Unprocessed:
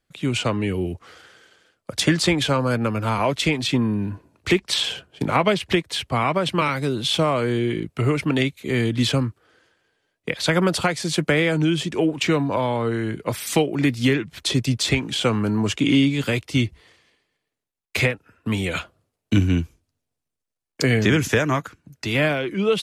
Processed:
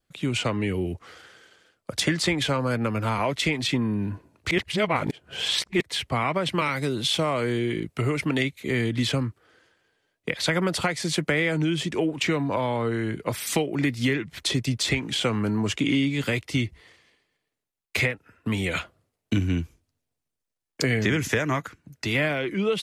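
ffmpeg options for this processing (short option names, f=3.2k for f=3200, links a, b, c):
-filter_complex "[0:a]asettb=1/sr,asplit=3[a][b][c];[a]atrim=end=6.534[d];[b]atrim=start=6.53:end=8.45,asetpts=PTS-STARTPTS,afade=t=in:d=0.004:c=qsin,afade=t=out:st=1.916:d=0.004:c=qsin,bass=f=250:g=-1,treble=f=4k:g=3[e];[c]atrim=start=8.446[f];[d][e]acrossfade=d=0.004:c1=hsin:c2=qsin[g];[g][f]acrossfade=d=0.004:c1=qsin:c2=hsin,asplit=3[h][i][j];[h]atrim=end=4.512[k];[i]atrim=start=4.508:end=5.812,asetpts=PTS-STARTPTS,areverse[l];[j]atrim=start=5.808[m];[k][l]acrossfade=d=0.004:c1=hsin:c2=hsin[n];[n][m]acrossfade=d=0.004:c1=hsin:c2=hsin,adynamicequalizer=threshold=0.01:dfrequency=2000:dqfactor=5.2:tfrequency=2000:tqfactor=5.2:attack=5:release=100:ratio=0.375:range=3:mode=boostabove:tftype=bell,acompressor=threshold=-22dB:ratio=2,volume=-1dB"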